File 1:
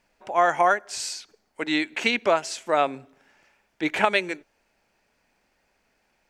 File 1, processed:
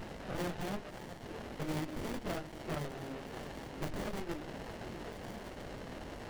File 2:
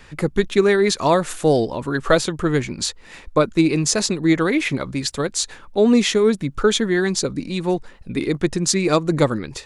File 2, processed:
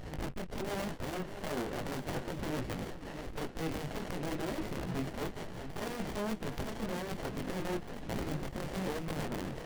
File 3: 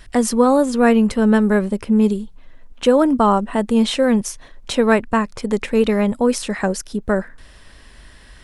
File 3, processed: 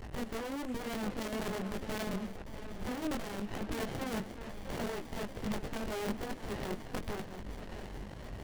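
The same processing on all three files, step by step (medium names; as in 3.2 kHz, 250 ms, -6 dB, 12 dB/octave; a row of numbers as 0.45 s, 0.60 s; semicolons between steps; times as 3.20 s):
one-bit delta coder 64 kbps, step -30.5 dBFS; resonant high shelf 3.6 kHz -9 dB, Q 3; compression 8:1, threshold -22 dBFS; integer overflow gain 21.5 dB; chorus 1.1 Hz, delay 18.5 ms, depth 3.9 ms; on a send: echo whose repeats swap between lows and highs 648 ms, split 2.1 kHz, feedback 60%, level -10 dB; on the sum: sliding maximum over 33 samples; trim -3 dB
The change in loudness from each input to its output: -18.0 LU, -19.0 LU, -22.0 LU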